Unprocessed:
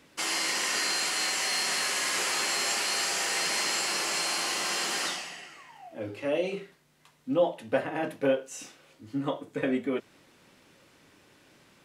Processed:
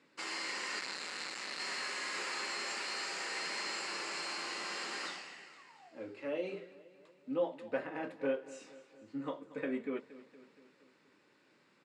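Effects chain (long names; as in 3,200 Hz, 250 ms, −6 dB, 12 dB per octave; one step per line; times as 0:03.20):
0:00.79–0:01.60: sub-harmonics by changed cycles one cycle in 2, muted
loudspeaker in its box 200–7,000 Hz, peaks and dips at 700 Hz −6 dB, 3,200 Hz −7 dB, 6,000 Hz −10 dB
repeating echo 234 ms, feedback 57%, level −17.5 dB
level −7.5 dB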